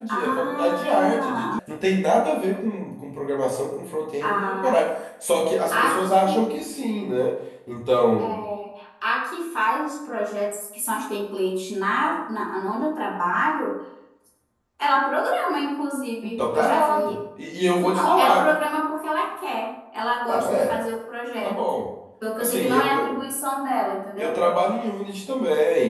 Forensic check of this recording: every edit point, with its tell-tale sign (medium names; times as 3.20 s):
1.59 s: sound stops dead